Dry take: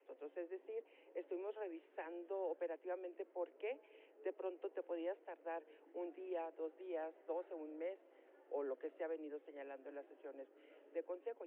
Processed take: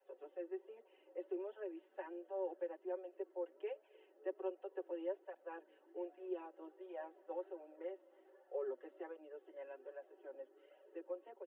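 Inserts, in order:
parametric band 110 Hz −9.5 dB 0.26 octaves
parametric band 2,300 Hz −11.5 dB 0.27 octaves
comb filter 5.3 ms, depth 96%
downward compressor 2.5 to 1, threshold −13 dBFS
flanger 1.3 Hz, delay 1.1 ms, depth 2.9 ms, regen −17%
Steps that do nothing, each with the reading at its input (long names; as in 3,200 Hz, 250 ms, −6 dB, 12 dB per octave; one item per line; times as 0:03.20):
parametric band 110 Hz: nothing at its input below 250 Hz
downward compressor, threshold −13 dBFS: peak of its input −26.5 dBFS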